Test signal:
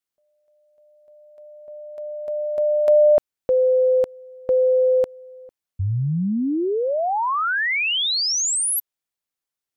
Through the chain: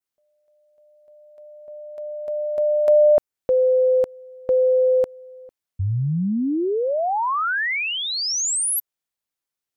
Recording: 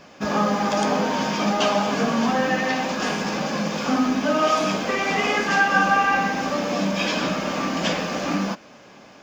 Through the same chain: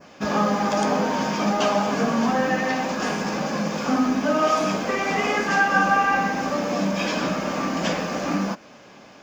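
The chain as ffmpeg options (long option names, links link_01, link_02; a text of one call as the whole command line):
ffmpeg -i in.wav -af "adynamicequalizer=threshold=0.00891:dfrequency=3400:dqfactor=1.2:tfrequency=3400:tqfactor=1.2:attack=5:release=100:ratio=0.375:range=2.5:mode=cutabove:tftype=bell" out.wav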